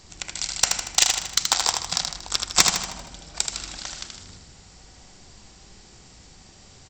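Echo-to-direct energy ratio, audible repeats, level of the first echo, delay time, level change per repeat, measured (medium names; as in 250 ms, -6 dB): -4.0 dB, 5, -5.0 dB, 78 ms, -6.0 dB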